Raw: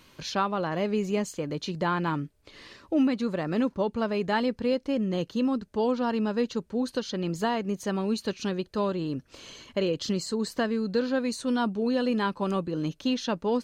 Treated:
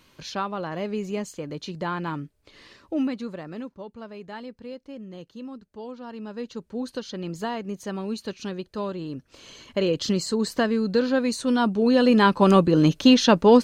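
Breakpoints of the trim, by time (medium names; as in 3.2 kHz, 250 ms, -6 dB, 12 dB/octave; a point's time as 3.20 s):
3.06 s -2 dB
3.77 s -12 dB
6.02 s -12 dB
6.75 s -2.5 dB
9.33 s -2.5 dB
9.93 s +4.5 dB
11.58 s +4.5 dB
12.51 s +12 dB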